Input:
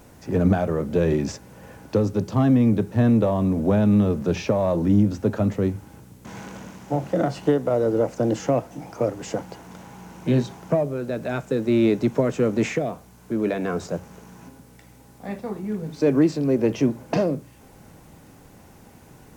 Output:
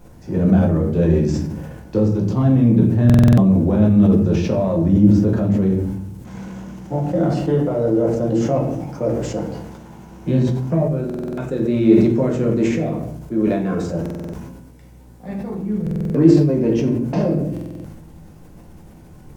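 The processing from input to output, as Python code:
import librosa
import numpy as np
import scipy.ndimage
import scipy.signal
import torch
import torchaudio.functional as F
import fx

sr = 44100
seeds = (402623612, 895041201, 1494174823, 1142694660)

y = fx.low_shelf(x, sr, hz=330.0, db=10.0)
y = fx.room_shoebox(y, sr, seeds[0], volume_m3=110.0, walls='mixed', distance_m=0.91)
y = fx.buffer_glitch(y, sr, at_s=(3.05, 11.05, 14.01, 15.82, 17.52), block=2048, repeats=6)
y = fx.sustainer(y, sr, db_per_s=39.0)
y = y * 10.0 ** (-6.5 / 20.0)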